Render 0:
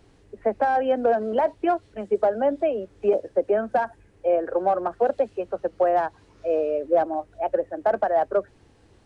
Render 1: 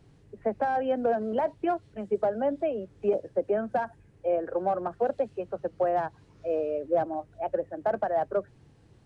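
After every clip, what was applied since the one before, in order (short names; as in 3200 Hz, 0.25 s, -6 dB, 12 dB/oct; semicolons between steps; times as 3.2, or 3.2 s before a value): bell 140 Hz +13 dB 0.94 oct; gain -6 dB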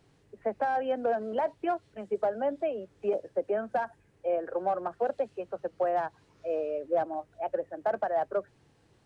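low shelf 280 Hz -10.5 dB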